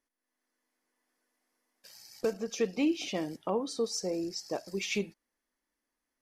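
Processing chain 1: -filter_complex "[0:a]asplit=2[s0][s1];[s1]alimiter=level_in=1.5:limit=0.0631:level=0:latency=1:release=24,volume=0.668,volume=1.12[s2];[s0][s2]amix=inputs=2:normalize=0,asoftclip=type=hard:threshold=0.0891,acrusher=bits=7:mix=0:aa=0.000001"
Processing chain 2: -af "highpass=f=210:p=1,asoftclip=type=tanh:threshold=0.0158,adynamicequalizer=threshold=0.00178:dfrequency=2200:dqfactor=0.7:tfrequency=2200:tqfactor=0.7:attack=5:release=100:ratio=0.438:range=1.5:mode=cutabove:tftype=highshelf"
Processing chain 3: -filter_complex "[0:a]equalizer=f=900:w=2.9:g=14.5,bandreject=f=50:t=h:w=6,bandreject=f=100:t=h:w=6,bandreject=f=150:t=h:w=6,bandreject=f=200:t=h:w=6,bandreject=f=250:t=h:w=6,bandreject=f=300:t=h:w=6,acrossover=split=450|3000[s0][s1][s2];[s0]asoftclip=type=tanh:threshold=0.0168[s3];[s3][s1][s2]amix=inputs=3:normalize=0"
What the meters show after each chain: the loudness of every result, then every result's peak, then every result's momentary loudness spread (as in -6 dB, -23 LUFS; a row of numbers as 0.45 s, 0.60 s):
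-29.5 LUFS, -41.5 LUFS, -33.5 LUFS; -21.0 dBFS, -36.0 dBFS, -15.5 dBFS; 9 LU, 11 LU, 6 LU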